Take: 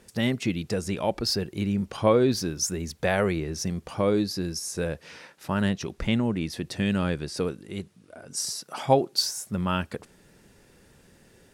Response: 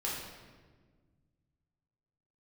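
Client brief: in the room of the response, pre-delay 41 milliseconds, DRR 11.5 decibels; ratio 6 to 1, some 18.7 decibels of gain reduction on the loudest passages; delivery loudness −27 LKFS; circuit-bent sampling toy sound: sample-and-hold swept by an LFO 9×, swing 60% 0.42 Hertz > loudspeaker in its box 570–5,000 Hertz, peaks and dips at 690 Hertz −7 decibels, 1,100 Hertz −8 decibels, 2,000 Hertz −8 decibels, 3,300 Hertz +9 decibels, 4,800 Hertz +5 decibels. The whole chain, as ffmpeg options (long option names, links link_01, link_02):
-filter_complex "[0:a]acompressor=threshold=-36dB:ratio=6,asplit=2[link_01][link_02];[1:a]atrim=start_sample=2205,adelay=41[link_03];[link_02][link_03]afir=irnorm=-1:irlink=0,volume=-16dB[link_04];[link_01][link_04]amix=inputs=2:normalize=0,acrusher=samples=9:mix=1:aa=0.000001:lfo=1:lforange=5.4:lforate=0.42,highpass=570,equalizer=frequency=690:width_type=q:width=4:gain=-7,equalizer=frequency=1100:width_type=q:width=4:gain=-8,equalizer=frequency=2000:width_type=q:width=4:gain=-8,equalizer=frequency=3300:width_type=q:width=4:gain=9,equalizer=frequency=4800:width_type=q:width=4:gain=5,lowpass=frequency=5000:width=0.5412,lowpass=frequency=5000:width=1.3066,volume=17.5dB"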